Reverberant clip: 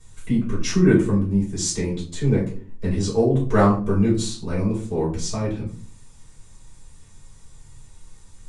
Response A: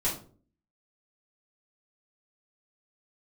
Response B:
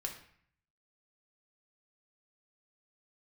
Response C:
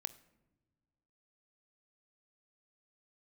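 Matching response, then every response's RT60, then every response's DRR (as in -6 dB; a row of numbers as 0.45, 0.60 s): A; 0.45 s, 0.60 s, not exponential; -8.5, 1.0, 13.0 dB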